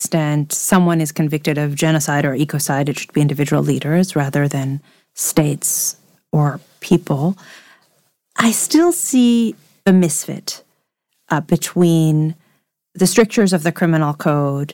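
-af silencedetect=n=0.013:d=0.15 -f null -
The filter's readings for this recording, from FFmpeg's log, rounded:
silence_start: 4.80
silence_end: 5.16 | silence_duration: 0.36
silence_start: 5.95
silence_end: 6.33 | silence_duration: 0.38
silence_start: 6.62
silence_end: 6.82 | silence_duration: 0.20
silence_start: 7.73
silence_end: 8.36 | silence_duration: 0.63
silence_start: 9.58
silence_end: 9.86 | silence_duration: 0.28
silence_start: 10.60
silence_end: 11.29 | silence_duration: 0.68
silence_start: 12.34
silence_end: 12.95 | silence_duration: 0.61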